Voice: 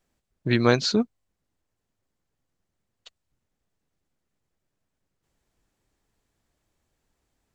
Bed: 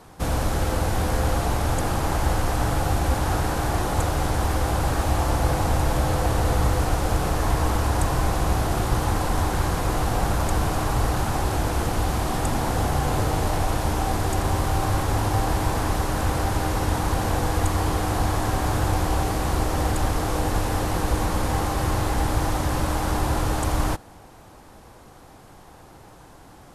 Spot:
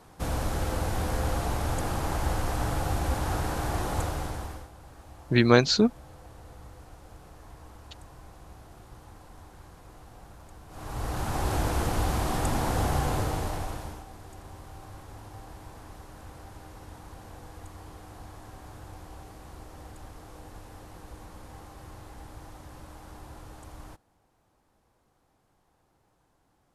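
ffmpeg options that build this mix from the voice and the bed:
ffmpeg -i stem1.wav -i stem2.wav -filter_complex "[0:a]adelay=4850,volume=1dB[link_01];[1:a]volume=17dB,afade=type=out:start_time=3.96:duration=0.73:silence=0.0944061,afade=type=in:start_time=10.68:duration=0.86:silence=0.0707946,afade=type=out:start_time=12.96:duration=1.09:silence=0.112202[link_02];[link_01][link_02]amix=inputs=2:normalize=0" out.wav

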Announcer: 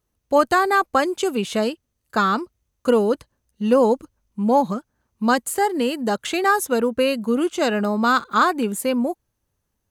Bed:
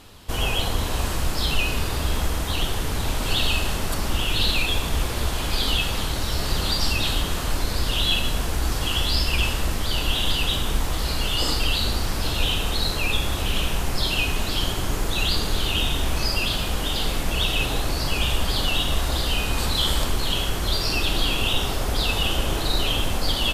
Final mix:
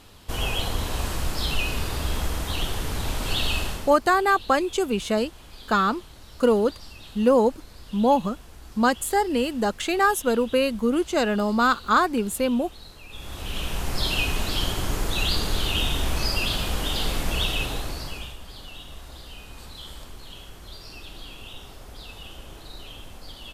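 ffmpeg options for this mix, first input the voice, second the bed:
ffmpeg -i stem1.wav -i stem2.wav -filter_complex "[0:a]adelay=3550,volume=-2dB[link_01];[1:a]volume=16.5dB,afade=type=out:start_time=3.61:duration=0.37:silence=0.125893,afade=type=in:start_time=13.09:duration=0.97:silence=0.105925,afade=type=out:start_time=17.34:duration=1.02:silence=0.141254[link_02];[link_01][link_02]amix=inputs=2:normalize=0" out.wav

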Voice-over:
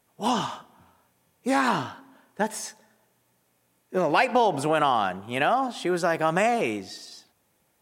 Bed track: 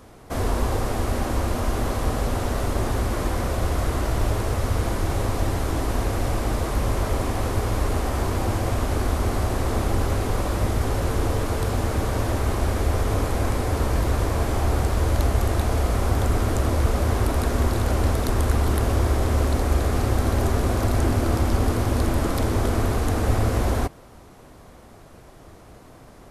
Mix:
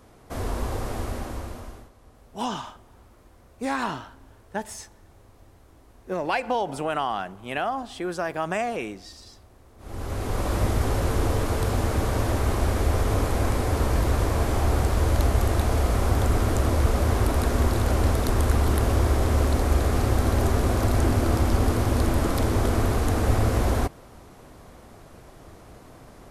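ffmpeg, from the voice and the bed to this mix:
ffmpeg -i stem1.wav -i stem2.wav -filter_complex "[0:a]adelay=2150,volume=-4.5dB[link_01];[1:a]volume=23.5dB,afade=type=out:start_time=0.99:duration=0.91:silence=0.0630957,afade=type=in:start_time=9.78:duration=0.77:silence=0.0354813[link_02];[link_01][link_02]amix=inputs=2:normalize=0" out.wav

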